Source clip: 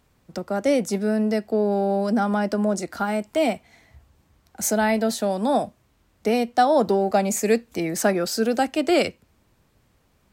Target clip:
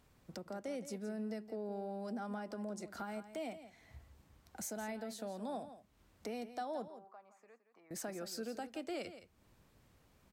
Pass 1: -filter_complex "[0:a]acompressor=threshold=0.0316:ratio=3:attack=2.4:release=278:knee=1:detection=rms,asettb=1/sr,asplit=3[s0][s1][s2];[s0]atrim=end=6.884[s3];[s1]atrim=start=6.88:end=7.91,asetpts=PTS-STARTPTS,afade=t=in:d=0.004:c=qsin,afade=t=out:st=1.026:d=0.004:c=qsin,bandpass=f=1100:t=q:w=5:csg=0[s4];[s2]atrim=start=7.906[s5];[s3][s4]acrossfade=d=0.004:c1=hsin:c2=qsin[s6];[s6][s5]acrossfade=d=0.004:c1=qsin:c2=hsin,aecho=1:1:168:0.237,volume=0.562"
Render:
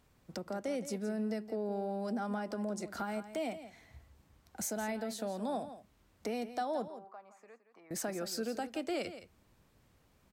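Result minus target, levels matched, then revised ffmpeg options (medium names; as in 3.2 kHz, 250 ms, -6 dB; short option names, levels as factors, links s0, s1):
compression: peak gain reduction -5.5 dB
-filter_complex "[0:a]acompressor=threshold=0.0119:ratio=3:attack=2.4:release=278:knee=1:detection=rms,asettb=1/sr,asplit=3[s0][s1][s2];[s0]atrim=end=6.884[s3];[s1]atrim=start=6.88:end=7.91,asetpts=PTS-STARTPTS,afade=t=in:d=0.004:c=qsin,afade=t=out:st=1.026:d=0.004:c=qsin,bandpass=f=1100:t=q:w=5:csg=0[s4];[s2]atrim=start=7.906[s5];[s3][s4]acrossfade=d=0.004:c1=hsin:c2=qsin[s6];[s6][s5]acrossfade=d=0.004:c1=qsin:c2=hsin,aecho=1:1:168:0.237,volume=0.562"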